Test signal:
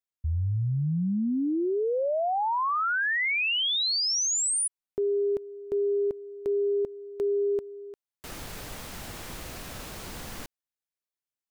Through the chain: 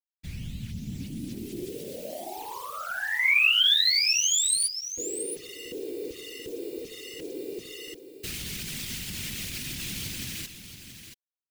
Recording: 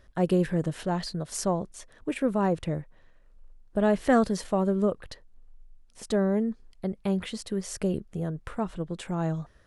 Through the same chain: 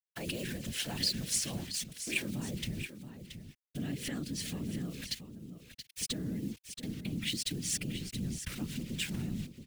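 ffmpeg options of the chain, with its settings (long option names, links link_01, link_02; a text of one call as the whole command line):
ffmpeg -i in.wav -filter_complex "[0:a]acrossover=split=2600[link_01][link_02];[link_02]acompressor=threshold=-33dB:ratio=4:attack=1:release=60[link_03];[link_01][link_03]amix=inputs=2:normalize=0,highpass=100,bandreject=frequency=60:width_type=h:width=6,bandreject=frequency=120:width_type=h:width=6,bandreject=frequency=180:width_type=h:width=6,bandreject=frequency=240:width_type=h:width=6,bandreject=frequency=300:width_type=h:width=6,bandreject=frequency=360:width_type=h:width=6,bandreject=frequency=420:width_type=h:width=6,bandreject=frequency=480:width_type=h:width=6,acrusher=bits=7:mix=0:aa=0.000001,asubboost=boost=10:cutoff=190,acompressor=threshold=-26dB:ratio=10:attack=24:release=242:knee=6:detection=peak,alimiter=level_in=2dB:limit=-24dB:level=0:latency=1:release=42,volume=-2dB,highshelf=frequency=1700:width_type=q:width=1.5:gain=13.5,afftfilt=real='hypot(re,im)*cos(2*PI*random(0))':imag='hypot(re,im)*sin(2*PI*random(1))':win_size=512:overlap=0.75,aecho=1:1:677:0.316" out.wav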